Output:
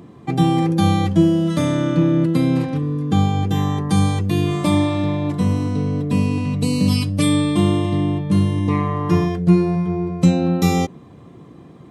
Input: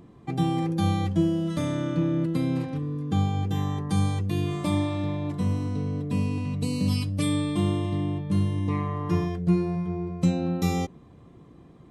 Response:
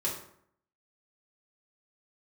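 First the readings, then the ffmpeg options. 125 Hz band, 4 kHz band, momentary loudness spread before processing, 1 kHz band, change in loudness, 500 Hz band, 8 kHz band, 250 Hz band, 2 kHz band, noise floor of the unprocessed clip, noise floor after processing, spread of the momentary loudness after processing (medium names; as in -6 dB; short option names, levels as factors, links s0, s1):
+7.5 dB, +9.0 dB, 4 LU, +9.0 dB, +8.5 dB, +9.0 dB, +9.0 dB, +9.0 dB, +9.0 dB, -51 dBFS, -43 dBFS, 5 LU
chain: -af "highpass=96,volume=2.82"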